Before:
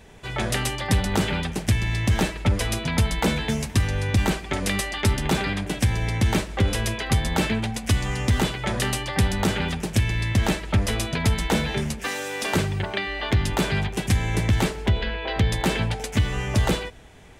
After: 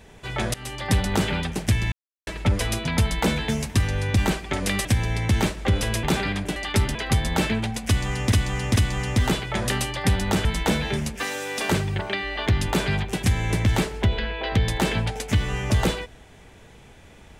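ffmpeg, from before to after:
-filter_complex "[0:a]asplit=11[s0][s1][s2][s3][s4][s5][s6][s7][s8][s9][s10];[s0]atrim=end=0.54,asetpts=PTS-STARTPTS,afade=t=out:st=0.536:d=0.004:c=hsin:silence=0.0749894[s11];[s1]atrim=start=0.54:end=1.92,asetpts=PTS-STARTPTS,afade=t=in:d=0.37:silence=0.0749894,afade=t=out:st=1.376:d=0.004:c=hsin[s12];[s2]atrim=start=1.92:end=2.27,asetpts=PTS-STARTPTS,volume=0[s13];[s3]atrim=start=2.27:end=4.852,asetpts=PTS-STARTPTS,afade=t=in:d=0.004:c=hsin[s14];[s4]atrim=start=5.768:end=6.952[s15];[s5]atrim=start=5.238:end=5.772[s16];[s6]atrim=start=4.848:end=5.242[s17];[s7]atrim=start=6.948:end=8.322[s18];[s8]atrim=start=7.878:end=8.322[s19];[s9]atrim=start=7.878:end=9.572[s20];[s10]atrim=start=11.288[s21];[s11][s12][s13][s14]concat=n=4:v=0:a=1[s22];[s22][s15]acrossfade=d=0.004:c1=hsin:c2=hsin[s23];[s23][s16]acrossfade=d=0.004:c1=hsin:c2=hsin[s24];[s24][s17]acrossfade=d=0.004:c1=hsin:c2=hsin[s25];[s25][s18]acrossfade=d=0.004:c1=hsin:c2=hsin[s26];[s26][s19]acrossfade=d=0.004:c1=hsin:c2=hsin[s27];[s27][s20]acrossfade=d=0.004:c1=hsin:c2=hsin[s28];[s28][s21]acrossfade=d=0.004:c1=hsin:c2=hsin"

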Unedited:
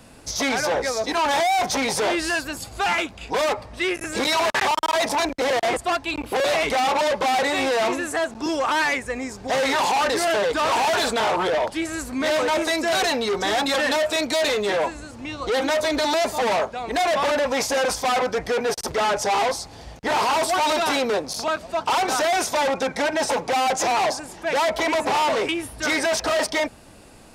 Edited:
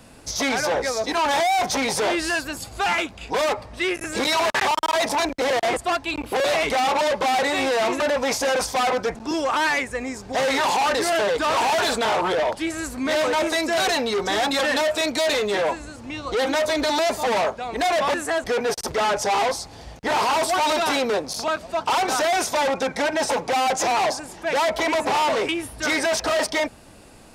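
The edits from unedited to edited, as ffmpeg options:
-filter_complex "[0:a]asplit=5[s0][s1][s2][s3][s4];[s0]atrim=end=8.002[s5];[s1]atrim=start=17.288:end=18.442[s6];[s2]atrim=start=8.298:end=17.292[s7];[s3]atrim=start=7.998:end=8.302[s8];[s4]atrim=start=18.438[s9];[s5][s6]acrossfade=d=0.004:c1=hsin:c2=hsin[s10];[s10][s7]acrossfade=d=0.004:c1=hsin:c2=hsin[s11];[s11][s8]acrossfade=d=0.004:c1=hsin:c2=hsin[s12];[s12][s9]acrossfade=d=0.004:c1=hsin:c2=hsin"

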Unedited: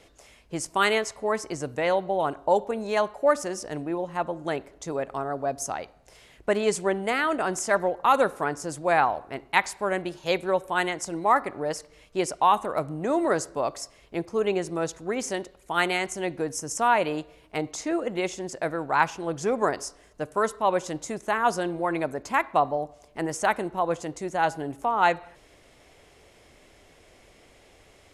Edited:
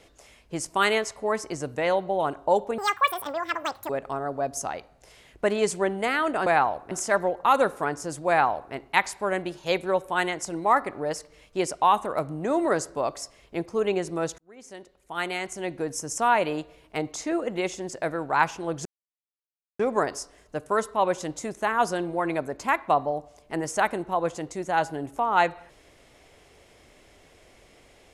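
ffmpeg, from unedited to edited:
-filter_complex "[0:a]asplit=7[s0][s1][s2][s3][s4][s5][s6];[s0]atrim=end=2.784[s7];[s1]atrim=start=2.78:end=4.94,asetpts=PTS-STARTPTS,asetrate=85554,aresample=44100,atrim=end_sample=49101,asetpts=PTS-STARTPTS[s8];[s2]atrim=start=4.936:end=7.512[s9];[s3]atrim=start=8.878:end=9.332[s10];[s4]atrim=start=7.508:end=14.98,asetpts=PTS-STARTPTS,afade=t=out:st=7.468:d=0.004:c=hsin[s11];[s5]atrim=start=14.98:end=19.45,asetpts=PTS-STARTPTS,afade=t=in:d=1.61,afade=t=out:st=4.466:d=0.004:c=hsin,apad=pad_dur=0.94[s12];[s6]atrim=start=19.45,asetpts=PTS-STARTPTS,afade=t=in:d=0.004:c=hsin[s13];[s7][s8]acrossfade=d=0.004:c1=hsin:c2=hsin[s14];[s14][s9]acrossfade=d=0.004:c1=hsin:c2=hsin[s15];[s15][s10]acrossfade=d=0.004:c1=hsin:c2=hsin[s16];[s11][s12][s13]concat=n=3:v=0:a=1[s17];[s16][s17]acrossfade=d=0.004:c1=hsin:c2=hsin"

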